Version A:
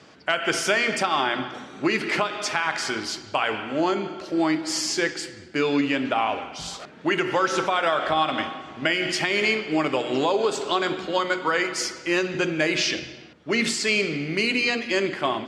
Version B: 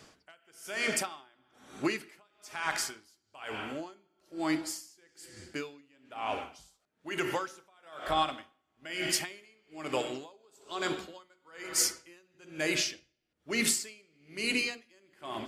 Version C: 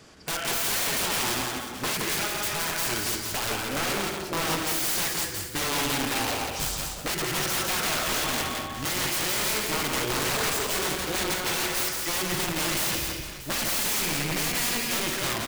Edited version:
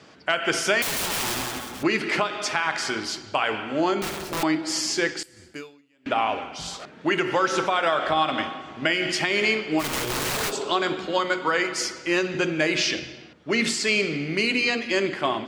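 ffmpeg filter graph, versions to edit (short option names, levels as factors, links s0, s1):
-filter_complex "[2:a]asplit=3[s0][s1][s2];[0:a]asplit=5[s3][s4][s5][s6][s7];[s3]atrim=end=0.822[s8];[s0]atrim=start=0.818:end=1.832[s9];[s4]atrim=start=1.828:end=4.022[s10];[s1]atrim=start=4.018:end=4.432[s11];[s5]atrim=start=4.428:end=5.232[s12];[1:a]atrim=start=5.228:end=6.062[s13];[s6]atrim=start=6.058:end=9.84[s14];[s2]atrim=start=9.78:end=10.53[s15];[s7]atrim=start=10.47[s16];[s8][s9]acrossfade=d=0.004:c1=hsin:c2=hsin[s17];[s17][s10]acrossfade=d=0.004:c1=hsin:c2=hsin[s18];[s18][s11]acrossfade=d=0.004:c1=hsin:c2=hsin[s19];[s19][s12]acrossfade=d=0.004:c1=hsin:c2=hsin[s20];[s20][s13]acrossfade=d=0.004:c1=hsin:c2=hsin[s21];[s21][s14]acrossfade=d=0.004:c1=hsin:c2=hsin[s22];[s22][s15]acrossfade=d=0.06:c1=tri:c2=tri[s23];[s23][s16]acrossfade=d=0.06:c1=tri:c2=tri"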